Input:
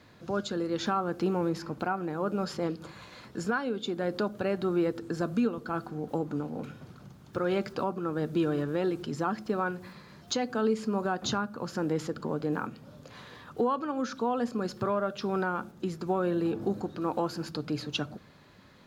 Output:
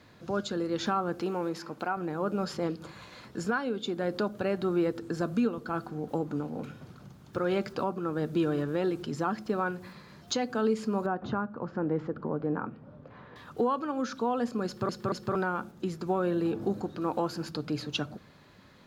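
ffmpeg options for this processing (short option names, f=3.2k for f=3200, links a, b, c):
-filter_complex "[0:a]asettb=1/sr,asplit=3[a][b][c];[a]atrim=end=1.214[d];[b]atrim=start=1.21:end=1.97,asetpts=PTS-STARTPTS,afade=t=in:d=0.004:c=qsin,afade=t=out:st=0.756:d=0.004:c=qsin,highpass=f=360:p=1[e];[c]atrim=start=1.966[f];[d][e]acrossfade=d=0.004:c1=hsin:c2=qsin[g];[g][f]acrossfade=d=0.004:c1=qsin:c2=hsin,asettb=1/sr,asplit=3[h][i][j];[h]atrim=end=11.064[k];[i]atrim=start=11.06:end=13.36,asetpts=PTS-STARTPTS,afade=t=in:d=0.004:c=qsin,afade=t=out:st=2.296:d=0.004:c=qsin,lowpass=1.5k[l];[j]atrim=start=13.356[m];[k][l]acrossfade=d=0.004:c1=hsin:c2=qsin[n];[n][m]acrossfade=d=0.004:c1=qsin:c2=hsin,asplit=4[o][p][q][r];[o]atrim=end=14.892[s];[p]atrim=start=14.658:end=14.892[t];[q]atrim=start=14.658:end=14.892[u];[r]atrim=start=15.348[v];[s][t]acrossfade=d=0.004:c1=hsin:c2=hsin[w];[w][u]acrossfade=d=0.004:c1=hsin:c2=hsin[x];[x][v]acrossfade=d=0.004:c1=hsin:c2=hsin"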